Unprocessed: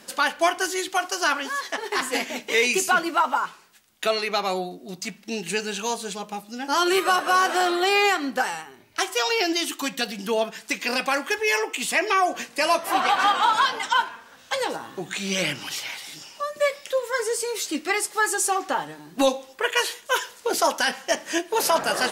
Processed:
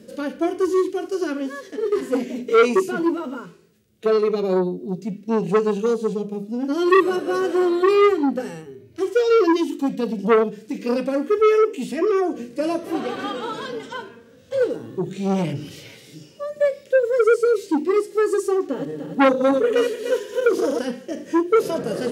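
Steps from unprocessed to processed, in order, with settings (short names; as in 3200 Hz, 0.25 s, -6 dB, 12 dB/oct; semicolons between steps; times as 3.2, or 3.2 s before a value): 18.62–20.79 regenerating reverse delay 0.149 s, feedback 56%, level -4 dB; HPF 53 Hz; bell 100 Hz +10.5 dB 2.3 oct; notches 50/100/150/200/250/300/350/400 Hz; harmonic-percussive split percussive -14 dB; resonant low shelf 620 Hz +10.5 dB, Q 3; core saturation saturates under 1200 Hz; gain -5 dB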